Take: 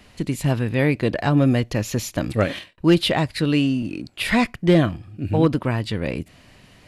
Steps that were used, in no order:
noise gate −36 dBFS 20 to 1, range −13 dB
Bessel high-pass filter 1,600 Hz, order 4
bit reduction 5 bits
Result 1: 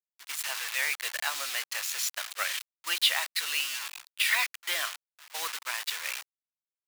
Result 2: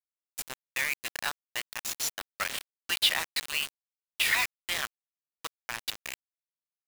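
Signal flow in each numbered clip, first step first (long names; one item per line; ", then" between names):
bit reduction, then Bessel high-pass filter, then noise gate
Bessel high-pass filter, then noise gate, then bit reduction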